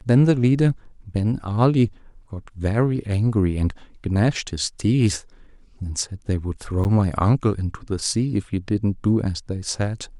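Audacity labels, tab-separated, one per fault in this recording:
6.840000	6.850000	dropout 9.2 ms

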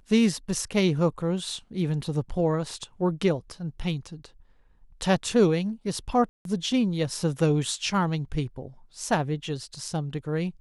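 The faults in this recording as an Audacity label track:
6.290000	6.450000	dropout 162 ms

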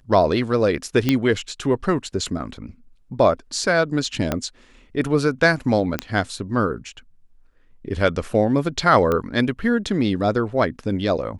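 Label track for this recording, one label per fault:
1.090000	1.090000	pop -5 dBFS
4.320000	4.320000	pop -7 dBFS
5.990000	5.990000	pop -7 dBFS
9.120000	9.120000	pop -10 dBFS

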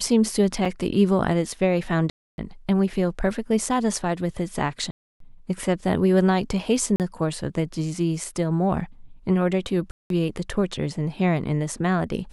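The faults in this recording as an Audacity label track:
0.650000	0.660000	dropout 5.6 ms
2.100000	2.380000	dropout 281 ms
4.910000	5.200000	dropout 293 ms
6.960000	7.000000	dropout 38 ms
9.910000	10.100000	dropout 192 ms

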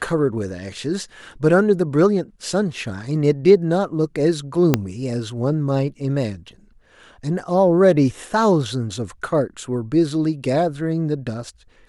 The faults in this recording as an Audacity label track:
4.740000	4.740000	pop -1 dBFS

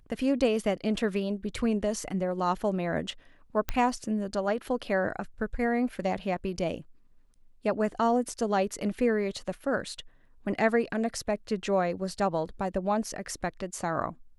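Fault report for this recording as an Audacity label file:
3.690000	3.690000	pop -14 dBFS

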